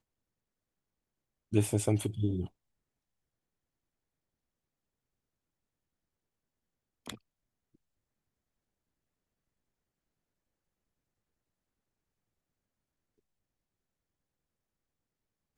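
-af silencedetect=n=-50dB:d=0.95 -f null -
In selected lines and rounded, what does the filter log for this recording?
silence_start: 0.00
silence_end: 1.52 | silence_duration: 1.52
silence_start: 2.48
silence_end: 7.06 | silence_duration: 4.58
silence_start: 7.17
silence_end: 15.58 | silence_duration: 8.40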